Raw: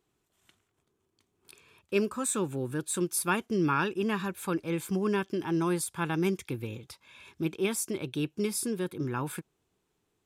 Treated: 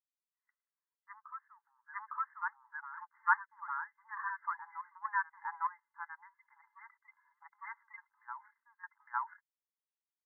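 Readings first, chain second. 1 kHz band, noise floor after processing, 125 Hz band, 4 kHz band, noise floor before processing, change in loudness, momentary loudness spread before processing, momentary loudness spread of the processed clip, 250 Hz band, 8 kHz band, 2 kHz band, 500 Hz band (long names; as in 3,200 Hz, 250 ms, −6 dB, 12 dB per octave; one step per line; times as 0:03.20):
−1.0 dB, below −85 dBFS, below −40 dB, below −40 dB, −78 dBFS, −9.0 dB, 8 LU, 19 LU, below −40 dB, below −40 dB, −2.0 dB, below −40 dB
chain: spectral dynamics exaggerated over time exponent 1.5
soft clipping −23 dBFS, distortion −18 dB
linear-phase brick-wall band-pass 830–2,100 Hz
gate pattern ".xxxxx.....xxx" 90 BPM −12 dB
backwards echo 857 ms −9.5 dB
level +6.5 dB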